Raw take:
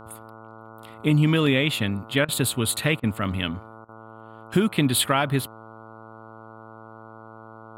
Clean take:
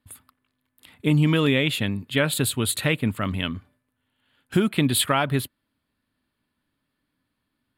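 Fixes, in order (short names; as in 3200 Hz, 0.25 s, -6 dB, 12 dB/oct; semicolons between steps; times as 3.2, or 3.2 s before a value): de-hum 111.2 Hz, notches 13; interpolate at 2.25/3/3.85, 34 ms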